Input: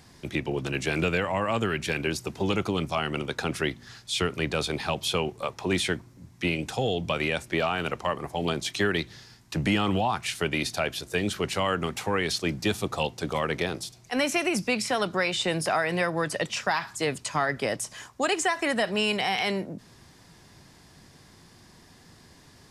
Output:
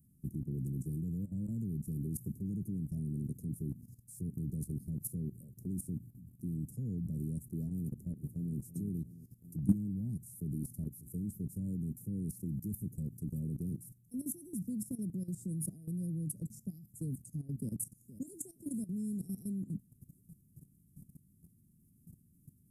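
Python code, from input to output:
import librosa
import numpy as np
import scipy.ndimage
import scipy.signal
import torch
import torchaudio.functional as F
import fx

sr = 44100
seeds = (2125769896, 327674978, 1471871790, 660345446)

y = fx.echo_throw(x, sr, start_s=7.86, length_s=0.68, ms=350, feedback_pct=45, wet_db=-7.5)
y = fx.echo_throw(y, sr, start_s=17.58, length_s=0.75, ms=470, feedback_pct=55, wet_db=-13.0)
y = scipy.signal.sosfilt(scipy.signal.cheby2(4, 80, [910.0, 3200.0], 'bandstop', fs=sr, output='sos'), y)
y = fx.low_shelf(y, sr, hz=110.0, db=-12.0)
y = fx.level_steps(y, sr, step_db=15)
y = y * 10.0 ** (8.5 / 20.0)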